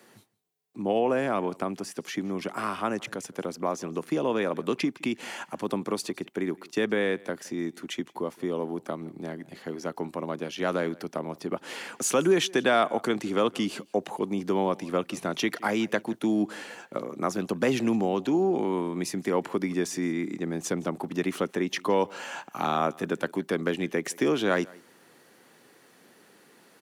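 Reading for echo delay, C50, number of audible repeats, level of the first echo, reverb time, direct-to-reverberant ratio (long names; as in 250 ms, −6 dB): 167 ms, no reverb audible, 1, −24.0 dB, no reverb audible, no reverb audible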